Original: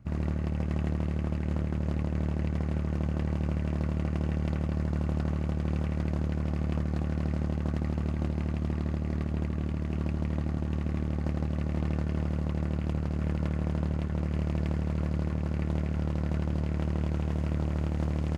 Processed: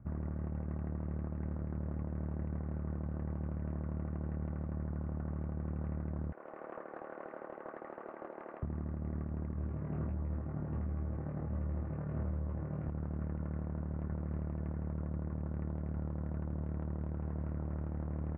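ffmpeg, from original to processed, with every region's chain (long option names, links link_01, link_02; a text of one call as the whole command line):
ffmpeg -i in.wav -filter_complex "[0:a]asettb=1/sr,asplit=3[link_01][link_02][link_03];[link_01]atrim=end=6.324[link_04];[link_02]atrim=start=6.32:end=8.63,asetpts=PTS-STARTPTS,afade=type=in:duration=0.004:curve=qsin,afade=type=out:start_time=2.306:duration=0.004:curve=qsin,highpass=frequency=430:width=0.5412,highpass=frequency=430:width=1.3066,asoftclip=type=hard:threshold=-34dB[link_05];[link_03]atrim=start=8.626[link_06];[link_04][link_05]acrossfade=duration=0.004:curve1=hsin:curve2=qsin[link_07];[link_07][link_06]acrossfade=duration=0.004:curve1=qsin:curve2=hsin,asettb=1/sr,asplit=3[link_08][link_09][link_10];[link_08]atrim=end=9.534[link_11];[link_09]atrim=start=9.53:end=12.88,asetpts=PTS-STARTPTS,afade=type=in:duration=0.004:curve=qsin,afade=type=out:start_time=3.346:duration=0.004:curve=qsin,flanger=delay=15:depth=5:speed=1.4,asplit=2[link_12][link_13];[link_13]adelay=25,volume=-6dB[link_14];[link_12][link_14]amix=inputs=2:normalize=0,atrim=end_sample=147735[link_15];[link_10]atrim=start=12.876[link_16];[link_11][link_15]acrossfade=duration=0.004:curve1=hsin:curve2=qsin[link_17];[link_17][link_16]acrossfade=duration=0.004:curve1=qsin:curve2=hsin,asettb=1/sr,asplit=3[link_18][link_19][link_20];[link_18]atrim=end=14.874[link_21];[link_19]atrim=start=14.87:end=17.18,asetpts=PTS-STARTPTS,afade=type=in:duration=0.004:curve=qsin,afade=type=out:start_time=2.306:duration=0.004:curve=qsin,equalizer=frequency=3700:width_type=o:width=0.46:gain=13,adynamicsmooth=sensitivity=6.5:basefreq=1600[link_22];[link_20]atrim=start=17.176[link_23];[link_21][link_22]acrossfade=duration=0.004:curve1=hsin:curve2=qsin[link_24];[link_24][link_23]acrossfade=duration=0.004:curve1=qsin:curve2=hsin,lowpass=frequency=1600:width=0.5412,lowpass=frequency=1600:width=1.3066,alimiter=level_in=1.5dB:limit=-24dB:level=0:latency=1:release=342,volume=-1.5dB,volume=-1dB" out.wav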